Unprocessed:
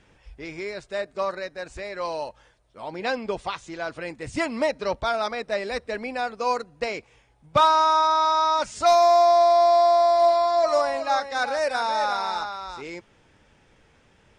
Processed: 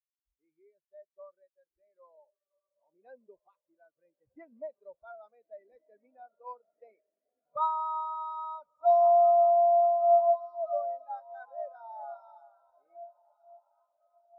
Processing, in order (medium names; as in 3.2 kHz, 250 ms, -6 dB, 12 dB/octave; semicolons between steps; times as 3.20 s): echo that smears into a reverb 1379 ms, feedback 65%, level -9.5 dB; spectral contrast expander 2.5:1; trim -7 dB